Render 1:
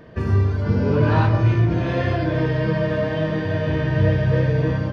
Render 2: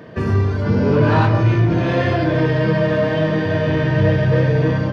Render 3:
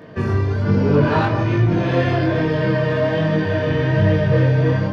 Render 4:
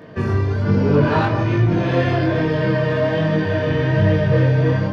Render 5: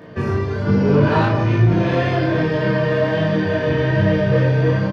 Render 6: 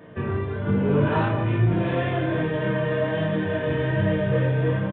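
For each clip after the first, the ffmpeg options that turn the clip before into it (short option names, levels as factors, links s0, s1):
-filter_complex "[0:a]highpass=110,asplit=2[s0][s1];[s1]asoftclip=type=tanh:threshold=0.075,volume=0.562[s2];[s0][s2]amix=inputs=2:normalize=0,volume=1.33"
-af "flanger=delay=19.5:depth=4.2:speed=1.2,volume=1.26"
-af anull
-filter_complex "[0:a]asplit=2[s0][s1];[s1]adelay=36,volume=0.447[s2];[s0][s2]amix=inputs=2:normalize=0"
-af "aresample=8000,aresample=44100,volume=0.501"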